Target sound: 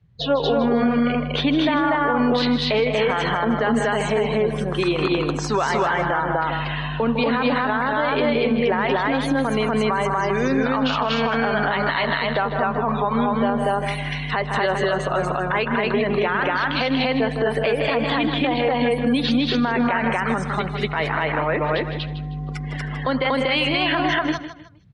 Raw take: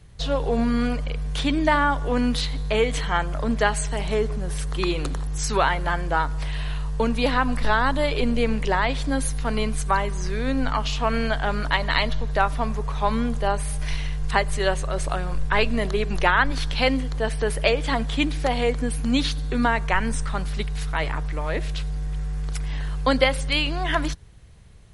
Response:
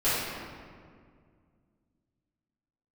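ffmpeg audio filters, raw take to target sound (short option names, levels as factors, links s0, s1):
-filter_complex "[0:a]acompressor=threshold=0.0891:ratio=6,asplit=2[s0][s1];[s1]aecho=0:1:192.4|239.1:0.282|1[s2];[s0][s2]amix=inputs=2:normalize=0,afftdn=nr=24:nf=-37,highpass=200,lowpass=3500,asplit=2[s3][s4];[s4]aecho=0:1:156|312|468:0.251|0.0779|0.0241[s5];[s3][s5]amix=inputs=2:normalize=0,alimiter=limit=0.0944:level=0:latency=1:release=42,volume=2.82"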